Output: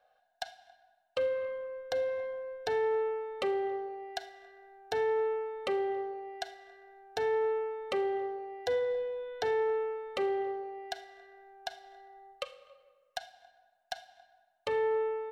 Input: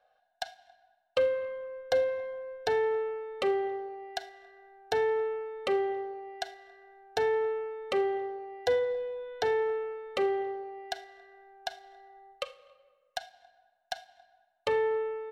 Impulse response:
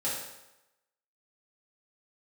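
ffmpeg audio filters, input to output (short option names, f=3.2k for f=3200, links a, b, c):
-filter_complex "[0:a]alimiter=limit=-22.5dB:level=0:latency=1:release=278,asplit=2[a][b];[1:a]atrim=start_sample=2205,adelay=57[c];[b][c]afir=irnorm=-1:irlink=0,volume=-26dB[d];[a][d]amix=inputs=2:normalize=0"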